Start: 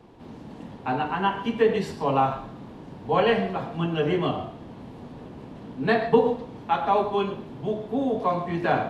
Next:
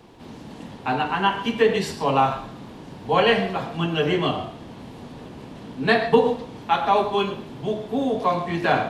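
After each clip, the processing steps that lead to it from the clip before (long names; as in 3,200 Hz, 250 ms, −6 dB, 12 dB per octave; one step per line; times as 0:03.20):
high-shelf EQ 2,100 Hz +9.5 dB
level +1.5 dB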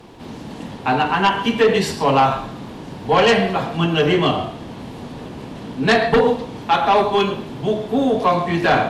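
sine wavefolder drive 7 dB, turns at −4 dBFS
level −4.5 dB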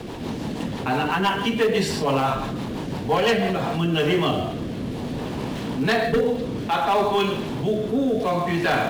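in parallel at −11 dB: log-companded quantiser 4 bits
on the sum: rotating-speaker cabinet horn 6 Hz, later 0.6 Hz, at 0:03.28
envelope flattener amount 50%
level −8 dB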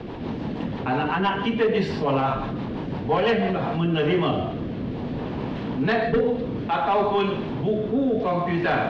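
high-frequency loss of the air 260 metres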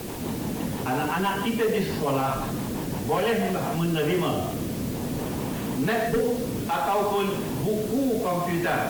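in parallel at −2 dB: brickwall limiter −20.5 dBFS, peak gain reduction 10 dB
on the sum: bit-depth reduction 6 bits, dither triangular
level −5.5 dB
Opus 48 kbit/s 48,000 Hz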